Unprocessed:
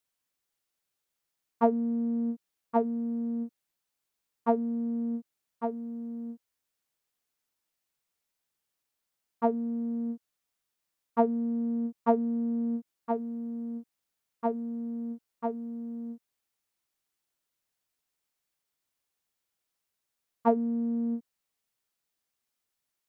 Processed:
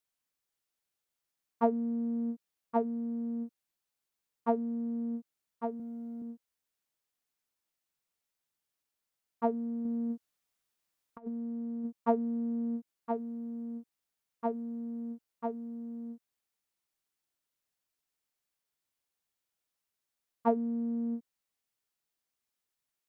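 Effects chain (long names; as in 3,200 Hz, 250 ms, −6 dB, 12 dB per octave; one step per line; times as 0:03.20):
0:05.79–0:06.22: comb filter 5.7 ms, depth 89%
0:09.85–0:11.85: compressor whose output falls as the input rises −32 dBFS, ratio −0.5
level −3.5 dB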